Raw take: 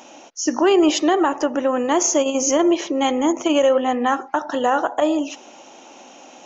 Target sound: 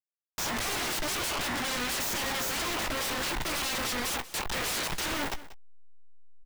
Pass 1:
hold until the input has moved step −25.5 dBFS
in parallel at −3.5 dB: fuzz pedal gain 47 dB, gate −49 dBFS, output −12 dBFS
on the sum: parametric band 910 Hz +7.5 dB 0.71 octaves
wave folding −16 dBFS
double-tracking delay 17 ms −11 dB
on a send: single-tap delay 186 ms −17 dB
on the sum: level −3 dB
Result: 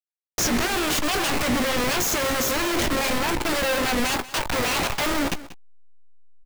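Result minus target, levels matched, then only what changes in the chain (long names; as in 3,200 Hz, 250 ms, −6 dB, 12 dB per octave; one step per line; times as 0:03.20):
wave folding: distortion −17 dB
change: wave folding −24 dBFS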